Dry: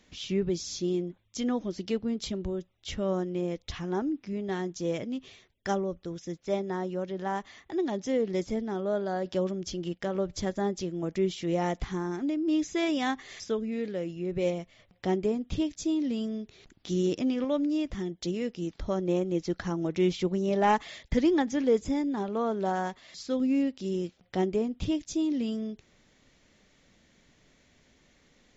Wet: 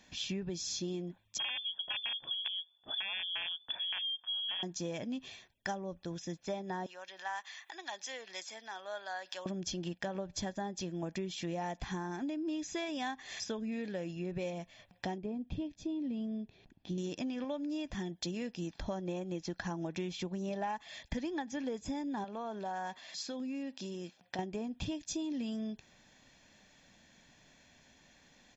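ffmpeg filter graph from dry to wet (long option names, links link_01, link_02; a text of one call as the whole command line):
ffmpeg -i in.wav -filter_complex "[0:a]asettb=1/sr,asplit=3[link_01][link_02][link_03];[link_01]atrim=end=1.384[link_04];[link_02]atrim=start=1.38:end=4.63,asetpts=PTS-STARTPTS,afade=type=in:duration=0.004:curve=qsin,afade=type=out:start_time=3.246:duration=0.004:curve=qsin,equalizer=frequency=1000:width=0.43:gain=-11.5,aeval=exprs='(mod(23.7*val(0)+1,2)-1)/23.7':channel_layout=same,lowpass=frequency=3000:width_type=q:width=0.5098,lowpass=frequency=3000:width_type=q:width=0.6013,lowpass=frequency=3000:width_type=q:width=0.9,lowpass=frequency=3000:width_type=q:width=2.563,afreqshift=-3500[link_05];[link_03]atrim=start=4.626[link_06];[link_04][link_05]acrossfade=duration=0.004:curve1=hsin:curve2=qsin[link_07];[link_07][link_06]acrossfade=duration=0.004:curve1=qsin:curve2=hsin,asettb=1/sr,asplit=3[link_08][link_09][link_10];[link_08]atrim=end=6.864[link_11];[link_09]atrim=start=6.86:end=9.46,asetpts=PTS-STARTPTS,afade=type=in:duration=0.004:curve=qsin,afade=type=out:start_time=2.596:duration=0.004:curve=qsin,highpass=1300,acompressor=mode=upward:threshold=-45dB:ratio=2.5:attack=3.2:release=140:knee=2.83:detection=peak[link_12];[link_10]atrim=start=9.456[link_13];[link_11][link_12]acrossfade=duration=0.004:curve1=hsin:curve2=qsin[link_14];[link_14][link_13]acrossfade=duration=0.004:curve1=qsin:curve2=hsin,asettb=1/sr,asplit=3[link_15][link_16][link_17];[link_15]atrim=end=15.184[link_18];[link_16]atrim=start=15.18:end=16.98,asetpts=PTS-STARTPTS,afade=type=in:duration=0.004:curve=qsin,afade=type=out:start_time=1.796:duration=0.004:curve=qsin,lowpass=2400,equalizer=frequency=1400:width_type=o:width=1.9:gain=-11[link_19];[link_17]atrim=start=16.976[link_20];[link_18][link_19]acrossfade=duration=0.004:curve1=hsin:curve2=qsin[link_21];[link_21][link_20]acrossfade=duration=0.004:curve1=qsin:curve2=hsin,asettb=1/sr,asplit=3[link_22][link_23][link_24];[link_22]atrim=end=22.244[link_25];[link_23]atrim=start=22.24:end=24.39,asetpts=PTS-STARTPTS,afade=type=in:duration=0.004:curve=qsin,afade=type=out:start_time=2.146:duration=0.004:curve=qsin,highpass=frequency=240:poles=1,acompressor=threshold=-35dB:ratio=5:attack=3.2:release=140:knee=1:detection=peak[link_26];[link_24]atrim=start=24.386[link_27];[link_25][link_26]acrossfade=duration=0.004:curve1=hsin:curve2=qsin[link_28];[link_28][link_27]acrossfade=duration=0.004:curve1=qsin:curve2=hsin,lowshelf=frequency=130:gain=-11,aecho=1:1:1.2:0.5,acompressor=threshold=-35dB:ratio=12,volume=1dB" out.wav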